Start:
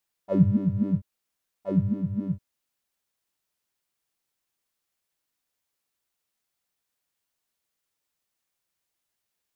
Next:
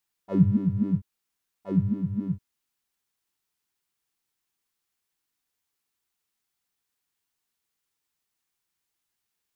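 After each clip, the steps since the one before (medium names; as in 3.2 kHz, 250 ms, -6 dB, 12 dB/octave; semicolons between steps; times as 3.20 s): peaking EQ 590 Hz -12.5 dB 0.23 oct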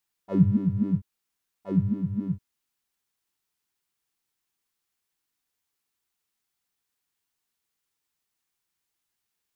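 no audible change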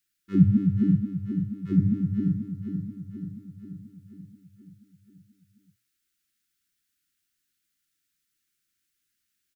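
Chebyshev band-stop 340–1400 Hz, order 3; hum notches 60/120 Hz; on a send: feedback delay 483 ms, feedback 58%, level -8 dB; on the sum: trim +3 dB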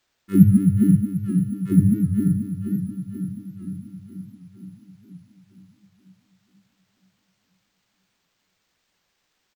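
careless resampling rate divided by 4×, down none, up hold; feedback delay 950 ms, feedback 41%, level -16 dB; warped record 78 rpm, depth 100 cents; trim +5.5 dB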